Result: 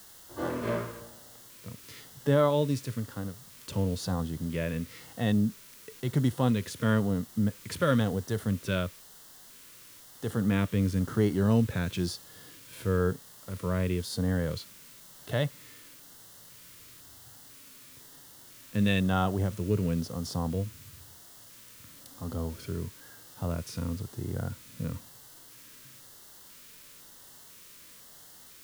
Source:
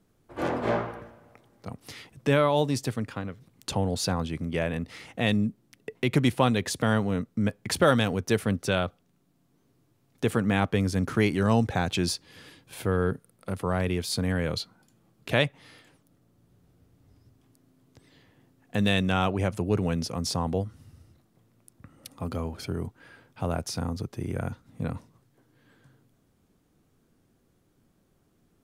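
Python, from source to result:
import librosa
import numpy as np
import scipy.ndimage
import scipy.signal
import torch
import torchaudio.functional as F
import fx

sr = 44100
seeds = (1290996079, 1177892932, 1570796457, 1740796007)

y = fx.quant_dither(x, sr, seeds[0], bits=8, dither='triangular')
y = fx.filter_lfo_notch(y, sr, shape='square', hz=1.0, low_hz=770.0, high_hz=2400.0, q=2.2)
y = fx.hpss(y, sr, part='percussive', gain_db=-10)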